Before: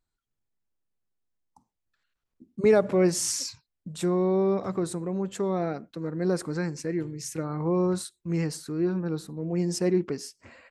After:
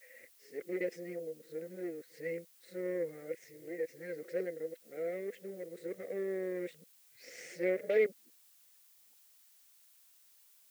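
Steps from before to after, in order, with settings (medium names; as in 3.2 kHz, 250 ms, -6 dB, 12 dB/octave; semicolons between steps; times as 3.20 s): reverse the whole clip; Chebyshev shaper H 6 -20 dB, 8 -17 dB, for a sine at -9.5 dBFS; two resonant band-passes 1 kHz, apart 2 oct; added noise blue -64 dBFS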